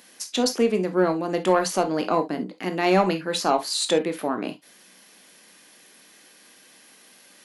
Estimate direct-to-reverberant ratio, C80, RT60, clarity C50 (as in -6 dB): 7.0 dB, 44.5 dB, no single decay rate, 14.5 dB